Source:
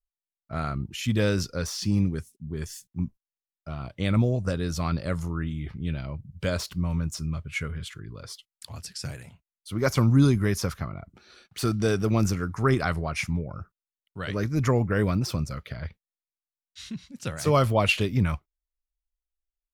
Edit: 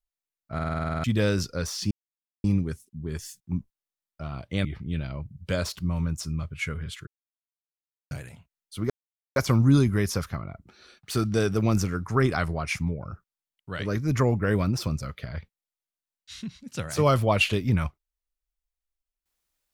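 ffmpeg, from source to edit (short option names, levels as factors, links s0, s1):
-filter_complex "[0:a]asplit=16[s0][s1][s2][s3][s4][s5][s6][s7][s8][s9][s10][s11][s12][s13][s14][s15];[s0]atrim=end=0.592[s16];[s1]atrim=start=0.538:end=0.592[s17];[s2]atrim=start=0.538:end=0.592[s18];[s3]atrim=start=0.538:end=0.592[s19];[s4]atrim=start=0.538:end=0.592[s20];[s5]atrim=start=0.538:end=0.592[s21];[s6]atrim=start=0.538:end=0.592[s22];[s7]atrim=start=0.538:end=0.592[s23];[s8]atrim=start=0.538:end=0.592[s24];[s9]atrim=start=0.538:end=0.592[s25];[s10]atrim=start=1.038:end=1.91,asetpts=PTS-STARTPTS,afade=t=out:st=0.868:d=0.004:c=hsin,apad=pad_dur=0.53[s26];[s11]atrim=start=1.91:end=4.122,asetpts=PTS-STARTPTS,afade=t=in:d=0.004:c=hsin[s27];[s12]atrim=start=5.588:end=8.01,asetpts=PTS-STARTPTS,afade=t=out:st=2.418:d=0.004:c=hsin[s28];[s13]atrim=start=8.01:end=9.05,asetpts=PTS-STARTPTS,volume=0[s29];[s14]atrim=start=9.05:end=9.84,asetpts=PTS-STARTPTS,afade=t=in:d=0.004:c=hsin,afade=t=out:st=0.786:d=0.004:c=hsin,apad=pad_dur=0.46[s30];[s15]atrim=start=9.84,asetpts=PTS-STARTPTS,afade=t=in:d=0.004:c=hsin[s31];[s16][s17]acrossfade=d=0.004:c1=hsin:c2=hsin[s32];[s32][s18]acrossfade=d=0.004:c1=hsin:c2=hsin[s33];[s33][s19]acrossfade=d=0.004:c1=hsin:c2=hsin[s34];[s34][s20]acrossfade=d=0.004:c1=hsin:c2=hsin[s35];[s35][s21]acrossfade=d=0.004:c1=hsin:c2=hsin[s36];[s36][s22]acrossfade=d=0.004:c1=hsin:c2=hsin[s37];[s37][s23]acrossfade=d=0.004:c1=hsin:c2=hsin[s38];[s38][s24]acrossfade=d=0.004:c1=hsin:c2=hsin[s39];[s39][s25]acrossfade=d=0.004:c1=hsin:c2=hsin[s40];[s26][s27]concat=n=2:v=0:a=1[s41];[s40][s41]acrossfade=d=0.004:c1=hsin:c2=hsin[s42];[s28][s29][s30][s31]concat=n=4:v=0:a=1[s43];[s42][s43]acrossfade=d=0.004:c1=hsin:c2=hsin"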